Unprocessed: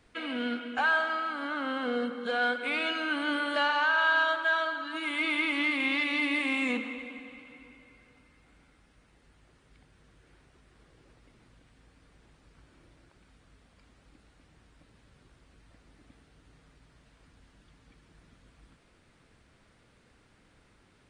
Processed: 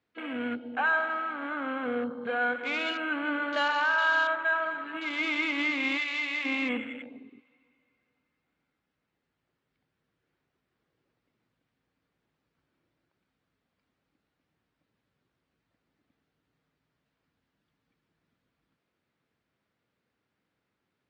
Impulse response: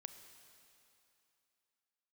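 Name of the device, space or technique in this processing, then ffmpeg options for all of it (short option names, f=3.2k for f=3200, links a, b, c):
over-cleaned archive recording: -filter_complex "[0:a]highpass=120,lowpass=5.2k,afwtdn=0.0126,asplit=3[a][b][c];[a]afade=t=out:st=5.97:d=0.02[d];[b]highpass=f=1.2k:p=1,afade=t=in:st=5.97:d=0.02,afade=t=out:st=6.44:d=0.02[e];[c]afade=t=in:st=6.44:d=0.02[f];[d][e][f]amix=inputs=3:normalize=0"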